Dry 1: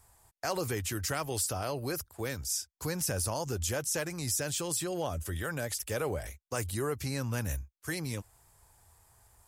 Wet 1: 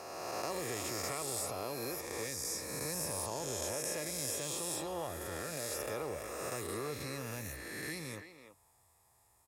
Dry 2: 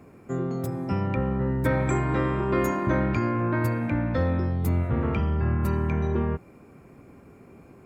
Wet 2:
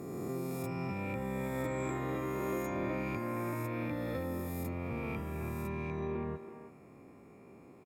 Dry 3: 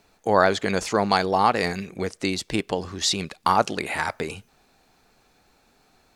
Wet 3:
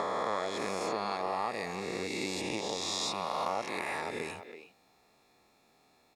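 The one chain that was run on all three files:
peak hold with a rise ahead of every peak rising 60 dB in 2.20 s
downward compressor 3 to 1, threshold −24 dBFS
notch comb filter 1,500 Hz
far-end echo of a speakerphone 330 ms, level −9 dB
level −8 dB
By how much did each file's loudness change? −4.5, −11.0, −10.5 LU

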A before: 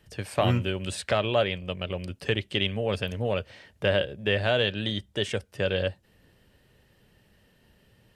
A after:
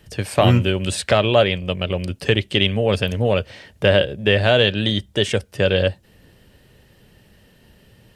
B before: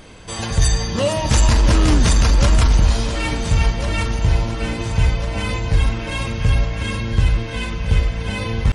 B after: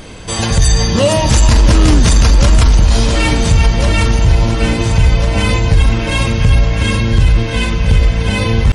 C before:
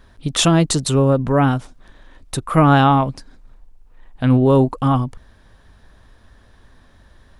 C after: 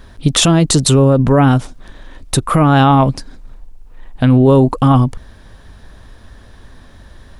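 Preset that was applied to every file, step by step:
parametric band 1,300 Hz −2.5 dB 2.2 octaves
brickwall limiter −12 dBFS
normalise the peak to −2 dBFS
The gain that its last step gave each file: +10.0, +10.0, +10.0 decibels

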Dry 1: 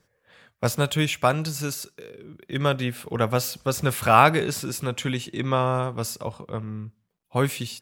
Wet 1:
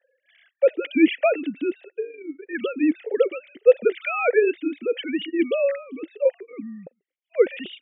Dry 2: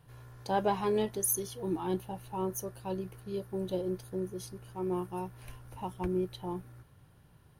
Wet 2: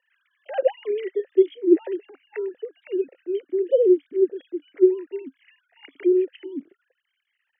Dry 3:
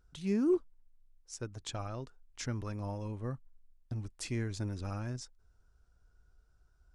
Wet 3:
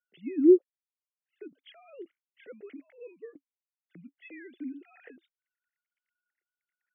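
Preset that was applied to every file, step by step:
three sine waves on the formant tracks
formant filter swept between two vowels e-i 1.6 Hz
loudness normalisation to −23 LKFS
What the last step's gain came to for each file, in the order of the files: +13.0, +19.0, +15.0 decibels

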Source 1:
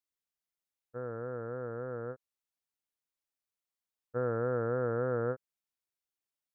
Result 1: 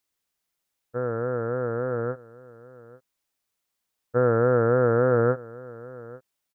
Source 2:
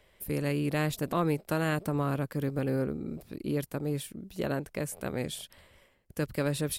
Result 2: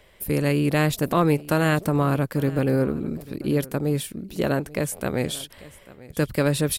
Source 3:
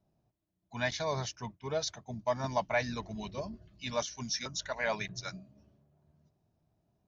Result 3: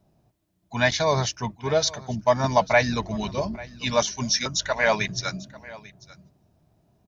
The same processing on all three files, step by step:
single-tap delay 843 ms −20 dB
loudness normalisation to −24 LKFS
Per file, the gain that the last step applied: +11.5, +8.5, +11.5 decibels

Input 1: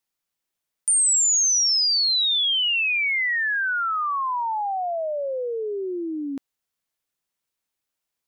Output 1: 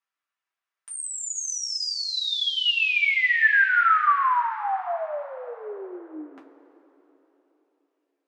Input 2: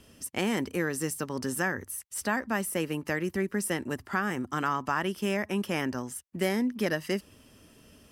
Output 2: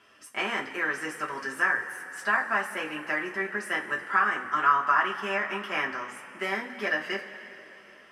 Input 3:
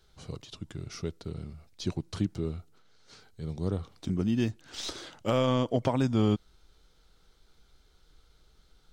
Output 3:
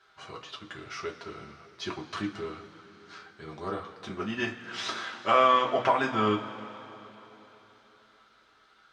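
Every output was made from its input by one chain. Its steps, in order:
resonant band-pass 1,500 Hz, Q 1.6
coupled-rooms reverb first 0.2 s, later 3.7 s, from −21 dB, DRR −3 dB
normalise the peak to −9 dBFS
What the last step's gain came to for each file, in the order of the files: +1.0, +5.0, +9.5 decibels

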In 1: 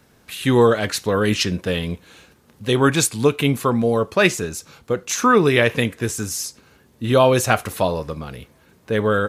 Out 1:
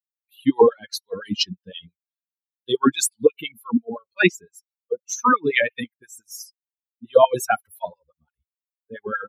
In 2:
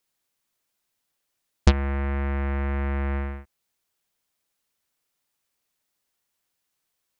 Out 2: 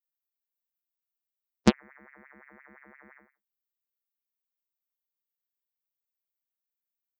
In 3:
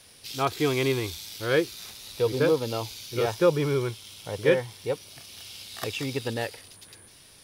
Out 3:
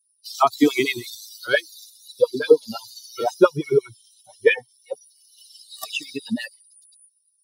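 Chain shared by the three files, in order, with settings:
spectral dynamics exaggerated over time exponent 3
auto-filter high-pass sine 5.8 Hz 210–2,600 Hz
normalise the peak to −1.5 dBFS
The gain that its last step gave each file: +1.0, +1.5, +10.0 decibels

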